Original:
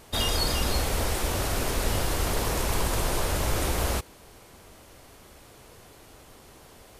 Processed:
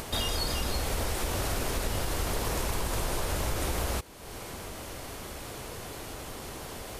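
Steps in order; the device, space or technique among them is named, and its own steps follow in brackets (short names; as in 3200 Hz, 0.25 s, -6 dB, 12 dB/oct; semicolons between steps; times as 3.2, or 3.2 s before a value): upward and downward compression (upward compressor, threshold -29 dBFS; compressor, threshold -26 dBFS, peak gain reduction 6.5 dB)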